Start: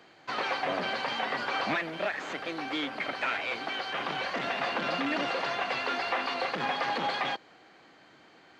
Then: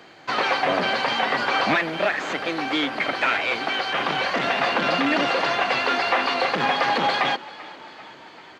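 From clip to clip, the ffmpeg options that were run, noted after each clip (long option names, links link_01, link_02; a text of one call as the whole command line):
ffmpeg -i in.wav -filter_complex "[0:a]asplit=7[link_01][link_02][link_03][link_04][link_05][link_06][link_07];[link_02]adelay=391,afreqshift=34,volume=-20dB[link_08];[link_03]adelay=782,afreqshift=68,volume=-23.7dB[link_09];[link_04]adelay=1173,afreqshift=102,volume=-27.5dB[link_10];[link_05]adelay=1564,afreqshift=136,volume=-31.2dB[link_11];[link_06]adelay=1955,afreqshift=170,volume=-35dB[link_12];[link_07]adelay=2346,afreqshift=204,volume=-38.7dB[link_13];[link_01][link_08][link_09][link_10][link_11][link_12][link_13]amix=inputs=7:normalize=0,volume=9dB" out.wav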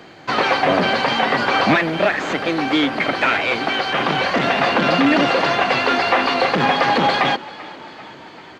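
ffmpeg -i in.wav -af "lowshelf=frequency=360:gain=8,volume=3.5dB" out.wav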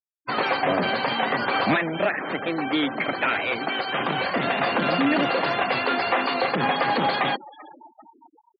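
ffmpeg -i in.wav -af "afftfilt=real='re*gte(hypot(re,im),0.0631)':imag='im*gte(hypot(re,im),0.0631)':win_size=1024:overlap=0.75,volume=-6dB" out.wav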